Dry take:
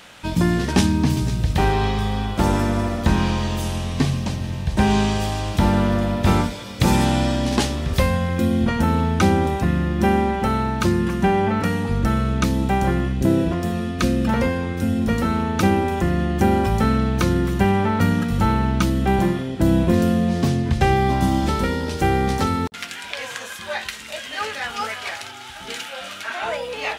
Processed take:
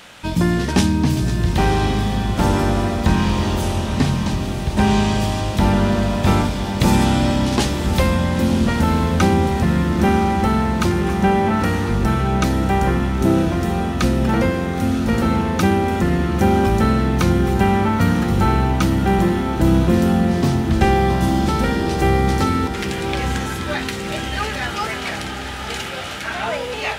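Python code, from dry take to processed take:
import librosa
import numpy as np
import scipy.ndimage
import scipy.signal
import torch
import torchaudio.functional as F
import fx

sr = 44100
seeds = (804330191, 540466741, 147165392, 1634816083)

p1 = fx.echo_diffused(x, sr, ms=984, feedback_pct=62, wet_db=-8)
p2 = 10.0 ** (-19.5 / 20.0) * np.tanh(p1 / 10.0 ** (-19.5 / 20.0))
y = p1 + F.gain(torch.from_numpy(p2), -10.0).numpy()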